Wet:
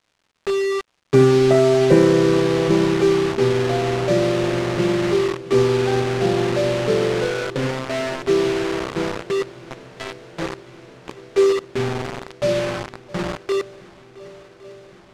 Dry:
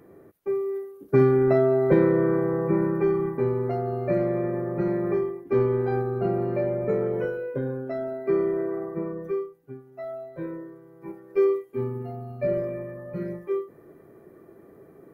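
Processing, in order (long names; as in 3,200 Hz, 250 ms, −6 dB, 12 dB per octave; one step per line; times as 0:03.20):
bit reduction 5 bits
on a send: feedback echo with a long and a short gap by turns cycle 1,110 ms, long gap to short 1.5 to 1, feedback 71%, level −22 dB
on the sum: surface crackle 300 per second −53 dBFS
high-frequency loss of the air 76 metres
level +5.5 dB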